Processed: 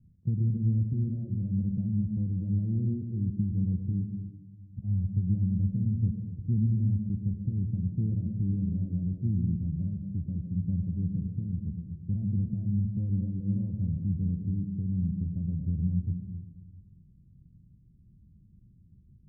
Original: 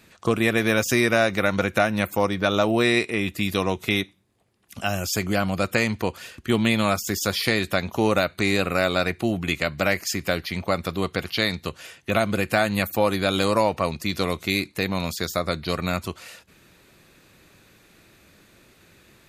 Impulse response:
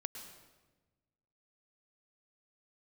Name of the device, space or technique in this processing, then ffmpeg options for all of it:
club heard from the street: -filter_complex "[0:a]alimiter=limit=-9.5dB:level=0:latency=1:release=34,lowpass=f=160:w=0.5412,lowpass=f=160:w=1.3066[a];[1:a]atrim=start_sample=2205[b];[a][b]afir=irnorm=-1:irlink=0,volume=7dB"

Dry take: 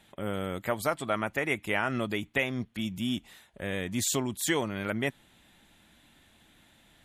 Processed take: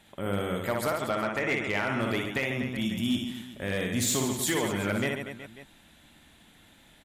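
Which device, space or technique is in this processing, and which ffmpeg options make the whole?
limiter into clipper: -filter_complex "[0:a]asettb=1/sr,asplit=3[a][b][c];[a]atrim=end=0.874[d];[b]atrim=start=0.87:end=1.76,asetpts=PTS-STARTPTS,afade=t=in:d=0.004:c=qsin,afade=t=out:st=0.886:d=0.004:c=qsin,lowpass=f=7.2k:w=0.5412,lowpass=f=7.2k:w=1.3066[e];[c]atrim=start=1.756[f];[d][e]acrossfade=d=0.004:c1=hsin:c2=qsin[g];[g][f]acrossfade=d=0.004:c1=qsin:c2=hsin,aecho=1:1:60|138|239.4|371.2|542.6:0.631|0.398|0.251|0.158|0.1,alimiter=limit=-17dB:level=0:latency=1:release=335,asoftclip=type=hard:threshold=-22dB,volume=1.5dB"

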